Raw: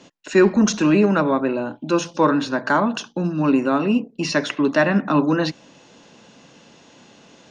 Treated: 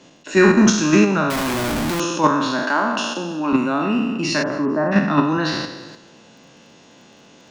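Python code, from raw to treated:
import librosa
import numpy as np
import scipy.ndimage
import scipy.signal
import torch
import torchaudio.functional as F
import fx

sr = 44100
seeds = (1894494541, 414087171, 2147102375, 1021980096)

p1 = fx.spec_trails(x, sr, decay_s=1.11)
p2 = fx.dmg_crackle(p1, sr, seeds[0], per_s=26.0, level_db=-46.0)
p3 = fx.lowpass(p2, sr, hz=1300.0, slope=24, at=(4.42, 4.91), fade=0.02)
p4 = p3 + fx.echo_feedback(p3, sr, ms=225, feedback_pct=43, wet_db=-23, dry=0)
p5 = fx.schmitt(p4, sr, flips_db=-31.5, at=(1.3, 2.0))
p6 = fx.dynamic_eq(p5, sr, hz=480.0, q=3.1, threshold_db=-33.0, ratio=4.0, max_db=-7)
p7 = fx.level_steps(p6, sr, step_db=14)
p8 = p6 + F.gain(torch.from_numpy(p7), 2.5).numpy()
p9 = fx.highpass(p8, sr, hz=230.0, slope=24, at=(2.63, 3.53))
y = F.gain(torch.from_numpy(p9), -5.0).numpy()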